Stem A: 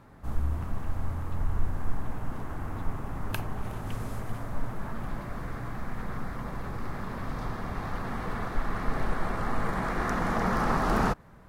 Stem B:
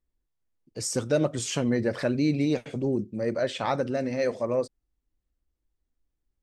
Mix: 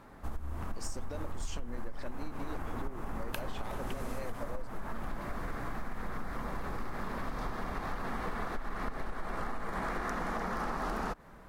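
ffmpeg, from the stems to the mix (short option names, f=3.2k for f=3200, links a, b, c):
-filter_complex "[0:a]acompressor=threshold=-28dB:ratio=6,volume=2dB[a];[1:a]aeval=exprs='if(lt(val(0),0),0.708*val(0),val(0))':c=same,acompressor=threshold=-33dB:ratio=6,volume=-4.5dB[b];[a][b]amix=inputs=2:normalize=0,equalizer=f=110:t=o:w=1.3:g=-9.5,acompressor=threshold=-31dB:ratio=6"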